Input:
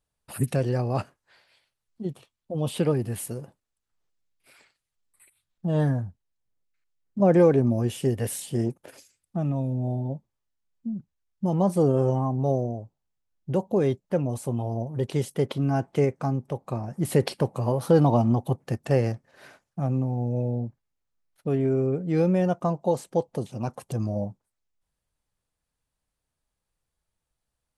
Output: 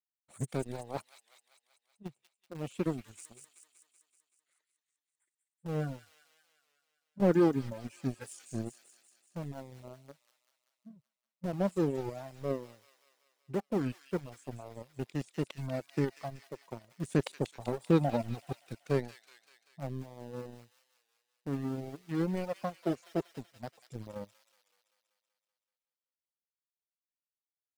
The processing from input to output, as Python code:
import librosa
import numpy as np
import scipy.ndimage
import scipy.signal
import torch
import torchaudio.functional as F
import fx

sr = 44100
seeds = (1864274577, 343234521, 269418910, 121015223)

p1 = fx.formant_shift(x, sr, semitones=-3)
p2 = fx.highpass(p1, sr, hz=130.0, slope=6)
p3 = np.where(np.abs(p2) >= 10.0 ** (-25.0 / 20.0), p2, 0.0)
p4 = p2 + (p3 * 10.0 ** (-8.5 / 20.0))
p5 = fx.power_curve(p4, sr, exponent=1.4)
p6 = fx.dereverb_blind(p5, sr, rt60_s=1.9)
p7 = p6 + fx.echo_wet_highpass(p6, sr, ms=190, feedback_pct=63, hz=2700.0, wet_db=-5, dry=0)
p8 = fx.record_warp(p7, sr, rpm=33.33, depth_cents=100.0)
y = p8 * 10.0 ** (-6.0 / 20.0)